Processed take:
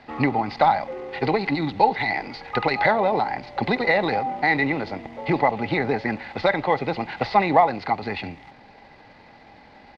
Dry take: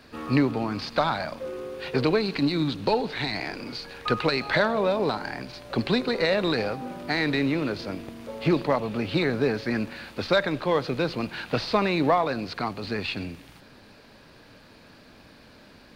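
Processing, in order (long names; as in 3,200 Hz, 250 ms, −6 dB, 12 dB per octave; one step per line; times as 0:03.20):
high-shelf EQ 3,500 Hz +2.5 dB
tempo change 1.6×
high-frequency loss of the air 140 metres
hollow resonant body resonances 810/2,000 Hz, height 17 dB, ringing for 30 ms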